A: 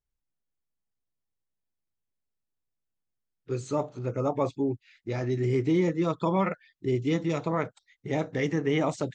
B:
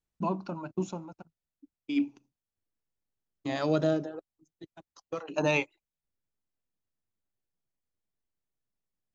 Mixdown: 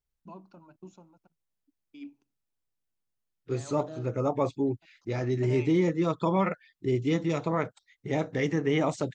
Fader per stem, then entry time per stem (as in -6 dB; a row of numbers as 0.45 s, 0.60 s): 0.0 dB, -16.0 dB; 0.00 s, 0.05 s